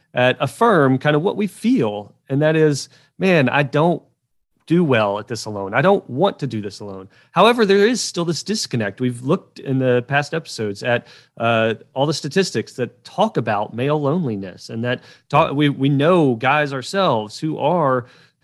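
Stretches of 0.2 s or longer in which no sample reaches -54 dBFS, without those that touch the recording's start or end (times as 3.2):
4.1–4.57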